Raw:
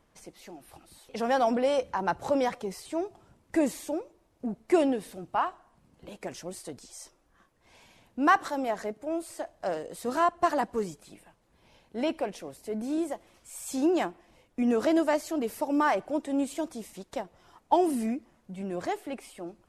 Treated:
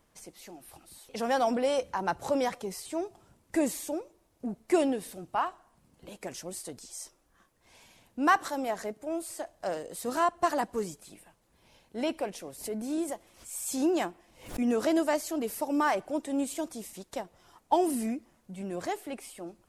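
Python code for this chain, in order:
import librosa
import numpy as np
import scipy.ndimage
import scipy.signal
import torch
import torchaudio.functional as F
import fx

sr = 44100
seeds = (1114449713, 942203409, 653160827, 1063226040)

y = fx.high_shelf(x, sr, hz=5700.0, db=9.0)
y = fx.pre_swell(y, sr, db_per_s=120.0, at=(12.42, 14.6))
y = y * librosa.db_to_amplitude(-2.0)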